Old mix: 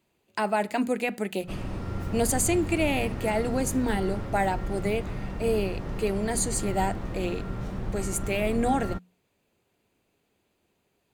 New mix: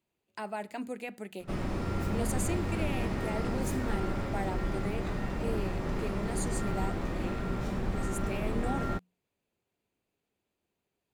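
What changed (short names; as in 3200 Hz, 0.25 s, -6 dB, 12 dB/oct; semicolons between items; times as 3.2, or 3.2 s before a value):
speech -11.5 dB; reverb: on, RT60 0.50 s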